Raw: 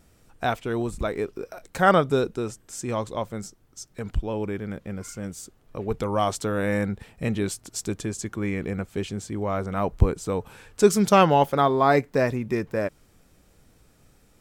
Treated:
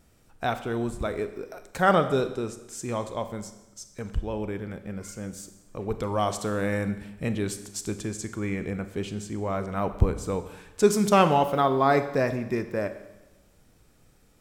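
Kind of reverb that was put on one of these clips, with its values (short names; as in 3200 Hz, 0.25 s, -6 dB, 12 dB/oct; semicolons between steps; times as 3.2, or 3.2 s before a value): Schroeder reverb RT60 1 s, combs from 30 ms, DRR 10 dB; gain -2.5 dB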